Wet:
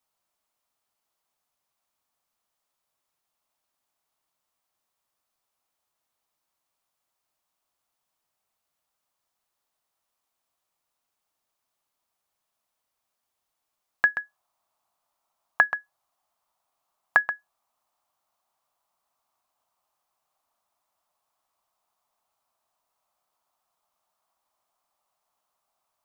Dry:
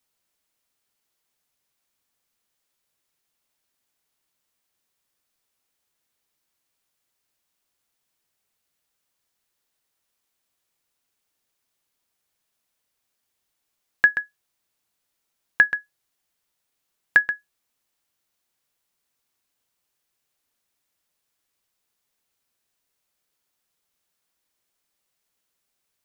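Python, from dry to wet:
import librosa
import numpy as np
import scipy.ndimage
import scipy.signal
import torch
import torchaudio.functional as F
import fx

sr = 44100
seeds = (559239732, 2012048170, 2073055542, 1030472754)

y = fx.band_shelf(x, sr, hz=880.0, db=fx.steps((0.0, 8.0), (14.21, 15.5)), octaves=1.3)
y = y * librosa.db_to_amplitude(-5.0)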